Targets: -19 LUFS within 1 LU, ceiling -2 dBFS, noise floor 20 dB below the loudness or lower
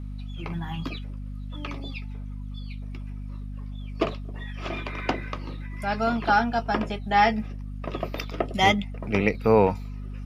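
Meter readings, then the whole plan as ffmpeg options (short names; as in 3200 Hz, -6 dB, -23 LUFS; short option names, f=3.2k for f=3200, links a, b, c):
hum 50 Hz; harmonics up to 250 Hz; hum level -32 dBFS; loudness -26.5 LUFS; peak -5.0 dBFS; loudness target -19.0 LUFS
-> -af "bandreject=f=50:t=h:w=6,bandreject=f=100:t=h:w=6,bandreject=f=150:t=h:w=6,bandreject=f=200:t=h:w=6,bandreject=f=250:t=h:w=6"
-af "volume=7.5dB,alimiter=limit=-2dB:level=0:latency=1"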